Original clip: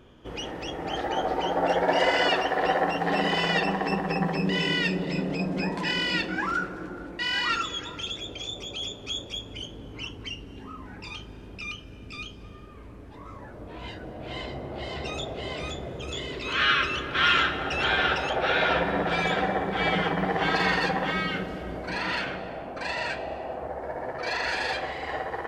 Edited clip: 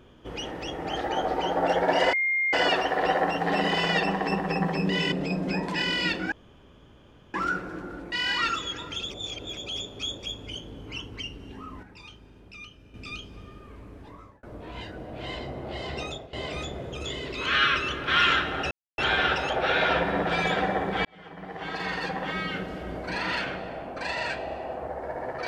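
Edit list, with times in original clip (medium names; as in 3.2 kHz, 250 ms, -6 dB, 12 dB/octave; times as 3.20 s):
2.13 s: add tone 2.12 kHz -22 dBFS 0.40 s
4.72–5.21 s: delete
6.41 s: insert room tone 1.02 s
8.17–8.64 s: reverse
10.90–12.01 s: gain -8 dB
13.12–13.50 s: fade out
15.09–15.40 s: fade out, to -17.5 dB
17.78 s: insert silence 0.27 s
19.85–21.76 s: fade in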